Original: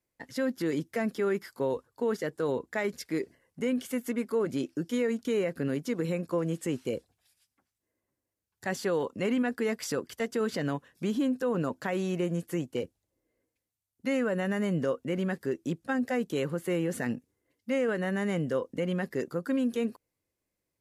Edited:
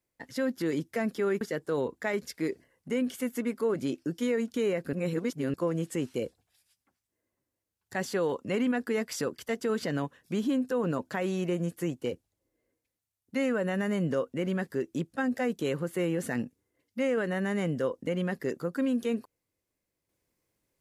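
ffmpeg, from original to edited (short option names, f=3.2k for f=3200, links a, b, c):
-filter_complex "[0:a]asplit=4[a][b][c][d];[a]atrim=end=1.412[e];[b]atrim=start=2.118:end=5.642[f];[c]atrim=start=5.638:end=6.252,asetpts=PTS-STARTPTS,areverse[g];[d]atrim=start=6.248[h];[e][f]acrossfade=d=0.004:c1=hsin:c2=hsin[i];[i][g]acrossfade=d=0.004:c1=hsin:c2=hsin[j];[j][h]acrossfade=d=0.004:c1=hsin:c2=hsin"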